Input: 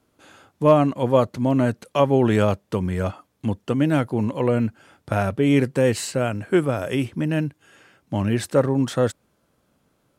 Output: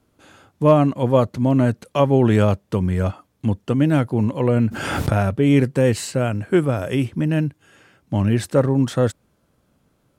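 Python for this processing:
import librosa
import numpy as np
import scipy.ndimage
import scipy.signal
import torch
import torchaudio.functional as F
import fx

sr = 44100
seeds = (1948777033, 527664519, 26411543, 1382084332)

y = fx.low_shelf(x, sr, hz=190.0, db=7.0)
y = fx.pre_swell(y, sr, db_per_s=34.0, at=(4.56, 5.31))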